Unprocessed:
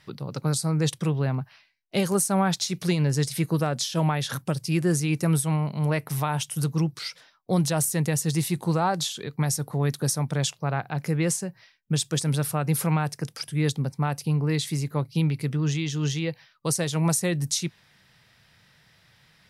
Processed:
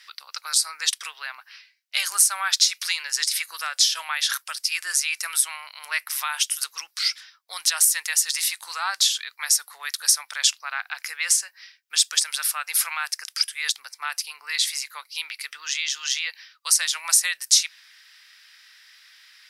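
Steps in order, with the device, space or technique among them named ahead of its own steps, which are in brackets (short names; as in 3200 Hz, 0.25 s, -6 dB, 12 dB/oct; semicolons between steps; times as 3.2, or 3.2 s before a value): headphones lying on a table (HPF 1400 Hz 24 dB/oct; bell 5100 Hz +4.5 dB 0.4 oct); gain +8.5 dB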